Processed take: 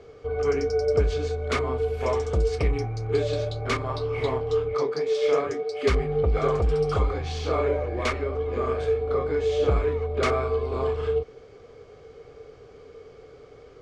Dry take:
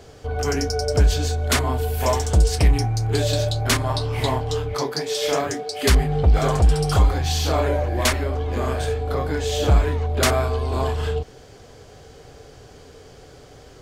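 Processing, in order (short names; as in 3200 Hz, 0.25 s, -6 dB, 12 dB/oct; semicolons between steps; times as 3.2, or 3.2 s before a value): air absorption 110 m; small resonant body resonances 450/1200/2200 Hz, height 12 dB, ringing for 25 ms; gain -8.5 dB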